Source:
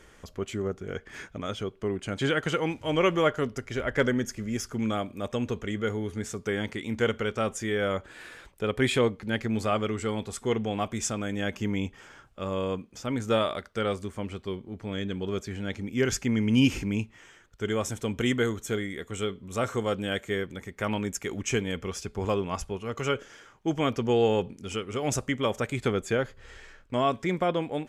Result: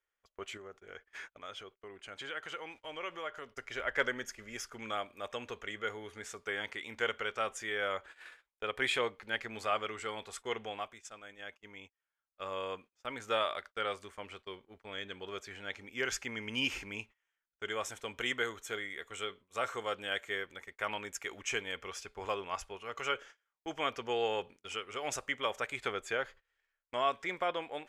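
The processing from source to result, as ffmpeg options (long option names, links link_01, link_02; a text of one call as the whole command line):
ffmpeg -i in.wav -filter_complex "[0:a]asettb=1/sr,asplit=3[link_01][link_02][link_03];[link_01]atrim=end=0.574[link_04];[link_02]atrim=start=0.57:end=3.54,asetpts=PTS-STARTPTS,afade=type=in:duration=0.004:curve=qsin,afade=type=out:start_time=2.966:duration=0.004:curve=qsin,acompressor=threshold=-38dB:ratio=2:attack=3.2:release=140:knee=1:detection=peak[link_05];[link_03]atrim=start=3.536[link_06];[link_04][link_05]acrossfade=duration=0.004:curve1=hsin:curve2=qsin[link_07];[link_07][link_06]acrossfade=duration=0.004:curve1=qsin:curve2=hsin,asplit=3[link_08][link_09][link_10];[link_08]atrim=end=10.95,asetpts=PTS-STARTPTS,afade=type=out:start_time=10.65:duration=0.3:silence=0.334965[link_11];[link_09]atrim=start=10.95:end=12.14,asetpts=PTS-STARTPTS,volume=-9.5dB[link_12];[link_10]atrim=start=12.14,asetpts=PTS-STARTPTS,afade=type=in:duration=0.3:silence=0.334965[link_13];[link_11][link_12][link_13]concat=n=3:v=0:a=1,bass=frequency=250:gain=-12,treble=frequency=4000:gain=-8,agate=range=-30dB:threshold=-45dB:ratio=16:detection=peak,equalizer=frequency=210:width_type=o:width=3:gain=-14" out.wav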